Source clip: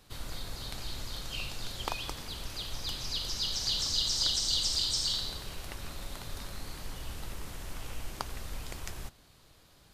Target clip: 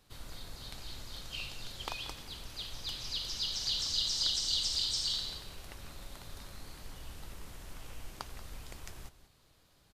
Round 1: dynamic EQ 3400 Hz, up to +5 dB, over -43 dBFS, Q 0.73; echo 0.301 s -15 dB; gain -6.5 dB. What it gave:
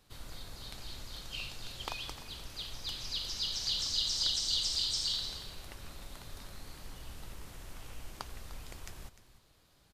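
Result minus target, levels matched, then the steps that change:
echo 0.118 s late
change: echo 0.183 s -15 dB

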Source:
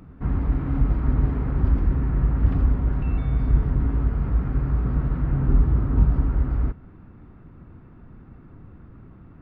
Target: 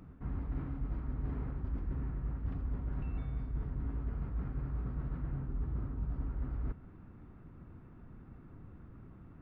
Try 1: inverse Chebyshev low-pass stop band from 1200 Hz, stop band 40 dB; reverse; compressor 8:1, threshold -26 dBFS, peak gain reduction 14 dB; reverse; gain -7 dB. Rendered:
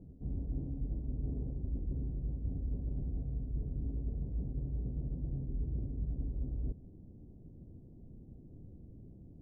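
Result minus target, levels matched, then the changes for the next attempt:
1000 Hz band -15.5 dB
remove: inverse Chebyshev low-pass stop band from 1200 Hz, stop band 40 dB

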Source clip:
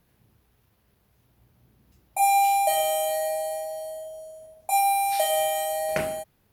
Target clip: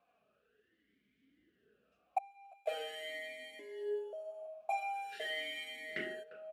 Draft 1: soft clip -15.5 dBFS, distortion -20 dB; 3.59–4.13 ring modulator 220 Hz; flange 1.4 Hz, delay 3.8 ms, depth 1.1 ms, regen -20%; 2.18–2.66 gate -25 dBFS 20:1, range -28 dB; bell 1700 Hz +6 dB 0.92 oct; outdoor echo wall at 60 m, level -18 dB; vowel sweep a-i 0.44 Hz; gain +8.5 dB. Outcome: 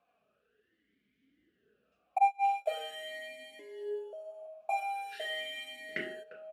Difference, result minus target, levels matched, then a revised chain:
soft clip: distortion -9 dB
soft clip -23.5 dBFS, distortion -11 dB; 3.59–4.13 ring modulator 220 Hz; flange 1.4 Hz, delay 3.8 ms, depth 1.1 ms, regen -20%; 2.18–2.66 gate -25 dBFS 20:1, range -28 dB; bell 1700 Hz +6 dB 0.92 oct; outdoor echo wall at 60 m, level -18 dB; vowel sweep a-i 0.44 Hz; gain +8.5 dB

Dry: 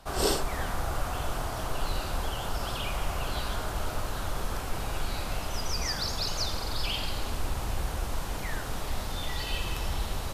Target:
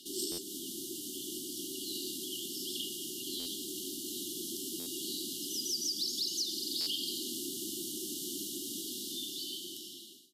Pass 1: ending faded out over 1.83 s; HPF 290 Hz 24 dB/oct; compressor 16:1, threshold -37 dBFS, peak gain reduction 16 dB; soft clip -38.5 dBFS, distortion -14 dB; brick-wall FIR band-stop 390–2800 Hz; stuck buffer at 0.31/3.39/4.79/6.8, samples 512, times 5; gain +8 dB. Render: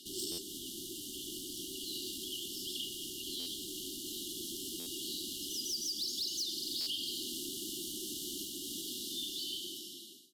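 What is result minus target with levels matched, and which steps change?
soft clip: distortion +16 dB; 2000 Hz band +3.0 dB
add after HPF: dynamic EQ 2300 Hz, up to -6 dB, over -49 dBFS, Q 0.72; change: soft clip -28 dBFS, distortion -30 dB

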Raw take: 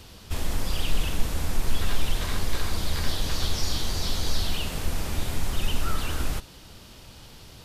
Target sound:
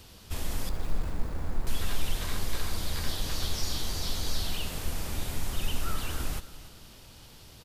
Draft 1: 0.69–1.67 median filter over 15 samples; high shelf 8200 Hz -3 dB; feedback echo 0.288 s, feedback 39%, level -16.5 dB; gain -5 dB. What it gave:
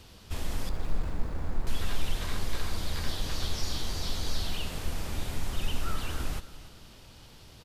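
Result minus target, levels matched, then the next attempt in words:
8000 Hz band -2.5 dB
0.69–1.67 median filter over 15 samples; high shelf 8200 Hz +5.5 dB; feedback echo 0.288 s, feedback 39%, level -16.5 dB; gain -5 dB

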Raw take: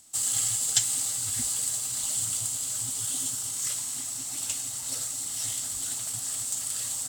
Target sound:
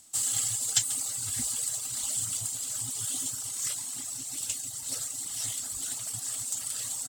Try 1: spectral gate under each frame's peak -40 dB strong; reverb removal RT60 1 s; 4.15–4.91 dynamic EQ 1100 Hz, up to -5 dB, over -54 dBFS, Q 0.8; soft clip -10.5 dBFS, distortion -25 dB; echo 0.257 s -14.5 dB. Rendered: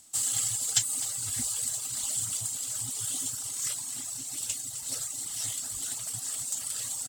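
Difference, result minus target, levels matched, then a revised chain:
echo 0.118 s late
spectral gate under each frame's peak -40 dB strong; reverb removal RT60 1 s; 4.15–4.91 dynamic EQ 1100 Hz, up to -5 dB, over -54 dBFS, Q 0.8; soft clip -10.5 dBFS, distortion -25 dB; echo 0.139 s -14.5 dB

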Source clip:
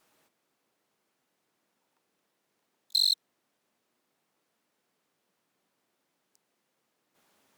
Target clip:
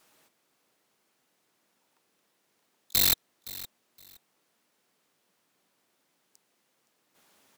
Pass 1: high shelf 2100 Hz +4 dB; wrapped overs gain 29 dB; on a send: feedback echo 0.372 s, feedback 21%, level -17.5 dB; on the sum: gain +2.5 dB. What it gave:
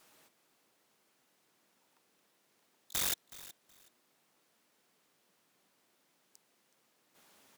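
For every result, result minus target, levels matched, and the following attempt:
wrapped overs: distortion +35 dB; echo 0.145 s early
high shelf 2100 Hz +4 dB; wrapped overs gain 18.5 dB; on a send: feedback echo 0.372 s, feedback 21%, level -17.5 dB; on the sum: gain +2.5 dB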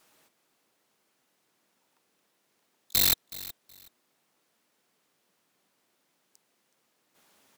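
echo 0.145 s early
high shelf 2100 Hz +4 dB; wrapped overs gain 18.5 dB; on a send: feedback echo 0.517 s, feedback 21%, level -17.5 dB; on the sum: gain +2.5 dB

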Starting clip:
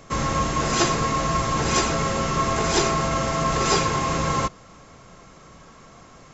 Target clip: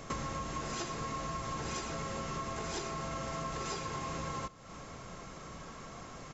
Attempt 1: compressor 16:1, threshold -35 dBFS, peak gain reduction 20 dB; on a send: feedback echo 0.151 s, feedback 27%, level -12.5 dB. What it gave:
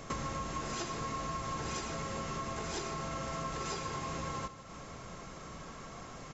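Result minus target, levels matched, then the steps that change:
echo-to-direct +9 dB
change: feedback echo 0.151 s, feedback 27%, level -21.5 dB

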